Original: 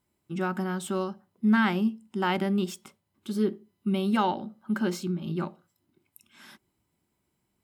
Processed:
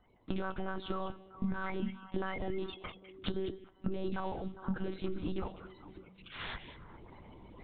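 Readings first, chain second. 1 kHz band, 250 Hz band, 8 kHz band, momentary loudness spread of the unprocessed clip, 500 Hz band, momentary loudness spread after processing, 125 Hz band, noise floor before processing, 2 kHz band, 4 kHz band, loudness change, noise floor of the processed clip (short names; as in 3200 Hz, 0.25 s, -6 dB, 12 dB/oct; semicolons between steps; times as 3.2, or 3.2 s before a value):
-11.0 dB, -12.0 dB, under -35 dB, 12 LU, -7.0 dB, 16 LU, -8.5 dB, -78 dBFS, -10.5 dB, -7.5 dB, -11.0 dB, -64 dBFS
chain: bin magnitudes rounded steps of 30 dB; limiter -22 dBFS, peak gain reduction 9.5 dB; reverse; upward compressor, threshold -49 dBFS; reverse; monotone LPC vocoder at 8 kHz 190 Hz; compressor 8:1, threshold -43 dBFS, peak gain reduction 19.5 dB; on a send: delay with a stepping band-pass 0.202 s, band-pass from 2700 Hz, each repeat -1.4 oct, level -9.5 dB; on the sum: gain +10.5 dB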